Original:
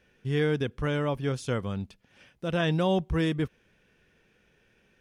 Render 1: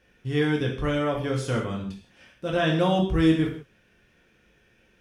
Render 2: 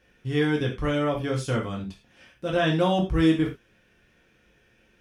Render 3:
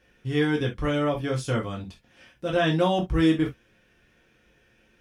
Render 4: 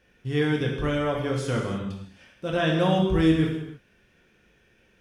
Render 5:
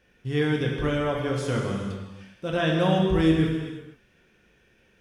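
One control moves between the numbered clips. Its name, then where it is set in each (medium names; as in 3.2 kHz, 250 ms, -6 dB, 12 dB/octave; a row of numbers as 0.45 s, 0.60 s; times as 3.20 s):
gated-style reverb, gate: 200 ms, 130 ms, 90 ms, 350 ms, 530 ms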